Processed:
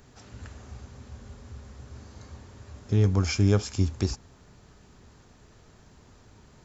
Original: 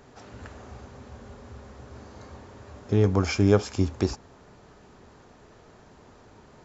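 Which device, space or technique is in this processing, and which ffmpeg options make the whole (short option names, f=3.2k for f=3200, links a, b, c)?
smiley-face EQ: -af "lowshelf=f=170:g=6,equalizer=f=590:t=o:w=2.6:g=-6,highshelf=f=5.3k:g=7.5,volume=-2dB"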